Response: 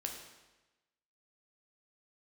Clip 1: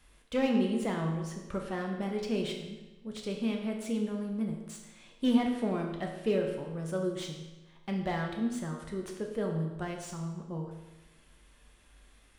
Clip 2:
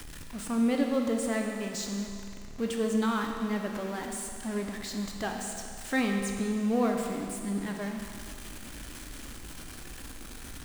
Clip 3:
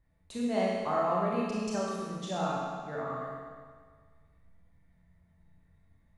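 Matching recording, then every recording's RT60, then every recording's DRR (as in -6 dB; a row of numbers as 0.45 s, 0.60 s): 1; 1.1 s, 2.3 s, 1.7 s; 1.5 dB, 2.0 dB, -5.5 dB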